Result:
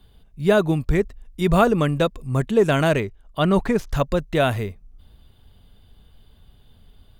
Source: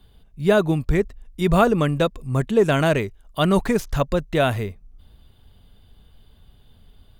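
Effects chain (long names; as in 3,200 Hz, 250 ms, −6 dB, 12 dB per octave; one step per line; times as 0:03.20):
0:03.00–0:03.88: high-shelf EQ 5,100 Hz −10 dB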